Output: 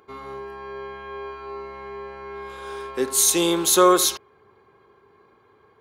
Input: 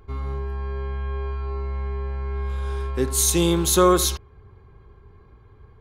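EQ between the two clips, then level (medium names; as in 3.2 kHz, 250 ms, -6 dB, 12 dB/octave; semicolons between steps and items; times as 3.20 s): high-pass 340 Hz 12 dB/octave; +2.5 dB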